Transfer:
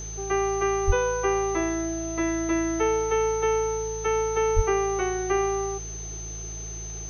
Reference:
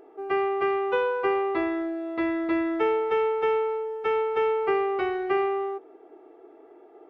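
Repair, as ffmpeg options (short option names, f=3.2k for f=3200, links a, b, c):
-filter_complex "[0:a]bandreject=f=54.7:t=h:w=4,bandreject=f=109.4:t=h:w=4,bandreject=f=164.1:t=h:w=4,bandreject=f=6.2k:w=30,asplit=3[a][b][c];[a]afade=t=out:st=0.86:d=0.02[d];[b]highpass=f=140:w=0.5412,highpass=f=140:w=1.3066,afade=t=in:st=0.86:d=0.02,afade=t=out:st=0.98:d=0.02[e];[c]afade=t=in:st=0.98:d=0.02[f];[d][e][f]amix=inputs=3:normalize=0,asplit=3[g][h][i];[g]afade=t=out:st=4.55:d=0.02[j];[h]highpass=f=140:w=0.5412,highpass=f=140:w=1.3066,afade=t=in:st=4.55:d=0.02,afade=t=out:st=4.67:d=0.02[k];[i]afade=t=in:st=4.67:d=0.02[l];[j][k][l]amix=inputs=3:normalize=0,afwtdn=0.004"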